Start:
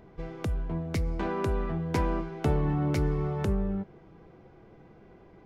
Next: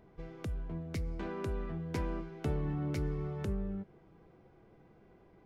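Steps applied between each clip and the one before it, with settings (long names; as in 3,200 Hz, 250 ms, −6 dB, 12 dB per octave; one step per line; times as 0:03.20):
dynamic equaliser 870 Hz, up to −5 dB, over −48 dBFS, Q 1.5
level −7.5 dB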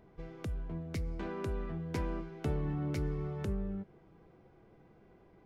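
no processing that can be heard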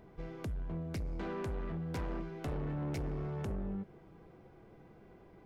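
soft clipping −37.5 dBFS, distortion −9 dB
level +3.5 dB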